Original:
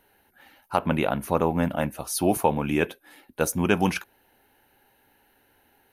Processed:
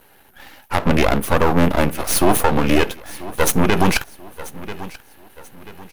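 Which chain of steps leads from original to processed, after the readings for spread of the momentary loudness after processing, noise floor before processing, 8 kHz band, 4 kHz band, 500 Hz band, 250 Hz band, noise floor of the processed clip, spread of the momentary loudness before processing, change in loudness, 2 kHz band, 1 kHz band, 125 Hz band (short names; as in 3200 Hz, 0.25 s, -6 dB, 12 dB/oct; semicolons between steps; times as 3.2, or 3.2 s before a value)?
18 LU, -64 dBFS, +9.0 dB, +11.0 dB, +6.0 dB, +6.5 dB, -51 dBFS, 7 LU, +7.5 dB, +8.5 dB, +7.0 dB, +7.5 dB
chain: half-wave rectifier; feedback echo 0.986 s, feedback 37%, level -19.5 dB; maximiser +16.5 dB; gain -1 dB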